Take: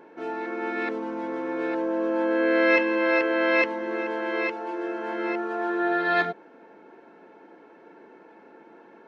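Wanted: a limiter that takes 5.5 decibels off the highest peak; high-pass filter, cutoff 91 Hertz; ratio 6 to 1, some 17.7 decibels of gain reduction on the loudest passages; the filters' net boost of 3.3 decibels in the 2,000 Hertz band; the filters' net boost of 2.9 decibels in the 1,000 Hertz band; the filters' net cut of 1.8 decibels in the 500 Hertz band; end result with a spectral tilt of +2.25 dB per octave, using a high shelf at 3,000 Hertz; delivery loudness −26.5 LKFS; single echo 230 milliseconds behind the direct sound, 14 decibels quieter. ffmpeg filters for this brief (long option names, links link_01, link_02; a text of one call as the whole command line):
ffmpeg -i in.wav -af "highpass=91,equalizer=frequency=500:width_type=o:gain=-3.5,equalizer=frequency=1000:width_type=o:gain=4.5,equalizer=frequency=2000:width_type=o:gain=5,highshelf=frequency=3000:gain=-6.5,acompressor=threshold=-35dB:ratio=6,alimiter=level_in=6dB:limit=-24dB:level=0:latency=1,volume=-6dB,aecho=1:1:230:0.2,volume=12dB" out.wav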